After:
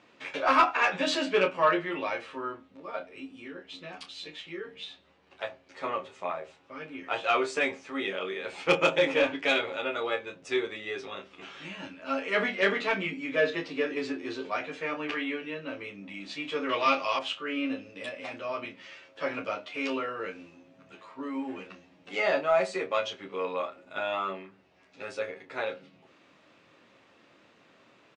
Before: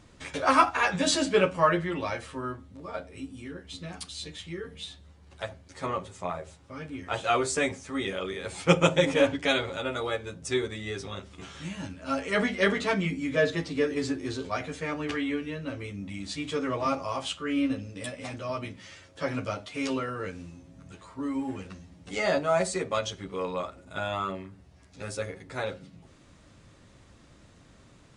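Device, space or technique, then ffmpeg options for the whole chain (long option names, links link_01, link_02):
intercom: -filter_complex "[0:a]highpass=330,lowpass=3700,equalizer=frequency=2600:width_type=o:width=0.35:gain=5.5,asoftclip=type=tanh:threshold=-13dB,asplit=2[link_01][link_02];[link_02]adelay=26,volume=-8.5dB[link_03];[link_01][link_03]amix=inputs=2:normalize=0,asettb=1/sr,asplit=3[link_04][link_05][link_06];[link_04]atrim=end=16.694[link_07];[link_05]atrim=start=16.69:end=17.19,asetpts=PTS-STARTPTS,afade=type=in:duration=0.004:curve=qsin,afade=type=out:start_time=0.496:duration=0.004:curve=qsin,equalizer=frequency=3600:width_type=o:width=1.8:gain=14.5[link_08];[link_06]atrim=start=17.186[link_09];[link_07][link_08]acrossfade=duration=0.004:curve1=hsin:curve2=qsin[link_10];[link_10][link_09]acrossfade=duration=0.004:curve1=qsin:curve2=hsin"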